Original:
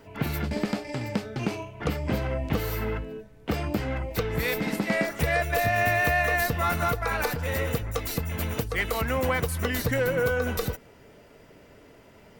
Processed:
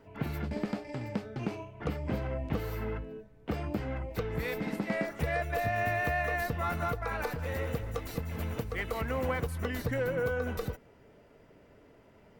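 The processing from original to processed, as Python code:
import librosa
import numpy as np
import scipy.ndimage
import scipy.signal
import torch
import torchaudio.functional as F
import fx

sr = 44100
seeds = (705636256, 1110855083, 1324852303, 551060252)

y = fx.high_shelf(x, sr, hz=2700.0, db=-9.0)
y = fx.echo_crushed(y, sr, ms=197, feedback_pct=55, bits=8, wet_db=-13, at=(7.13, 9.47))
y = y * 10.0 ** (-5.5 / 20.0)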